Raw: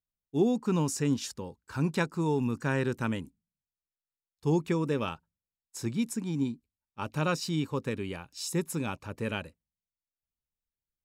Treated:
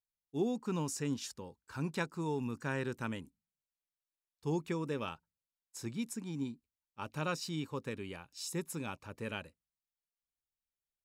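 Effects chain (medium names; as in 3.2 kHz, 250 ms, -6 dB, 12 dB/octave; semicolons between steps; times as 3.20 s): bass shelf 480 Hz -3.5 dB; trim -5.5 dB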